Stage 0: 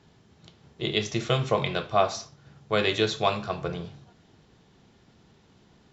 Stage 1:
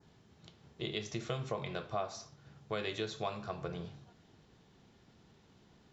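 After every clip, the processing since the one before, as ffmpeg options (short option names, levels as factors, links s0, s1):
-af "adynamicequalizer=threshold=0.00631:dfrequency=3100:dqfactor=1.2:tfrequency=3100:tqfactor=1.2:attack=5:release=100:ratio=0.375:range=2.5:mode=cutabove:tftype=bell,acompressor=threshold=0.0251:ratio=2.5,volume=0.562"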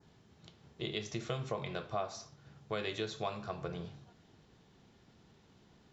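-af anull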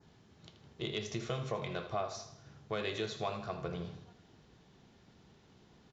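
-filter_complex "[0:a]asoftclip=type=tanh:threshold=0.0668,asplit=2[s0][s1];[s1]aecho=0:1:80|160|240|320|400:0.251|0.126|0.0628|0.0314|0.0157[s2];[s0][s2]amix=inputs=2:normalize=0,aresample=16000,aresample=44100,volume=1.12"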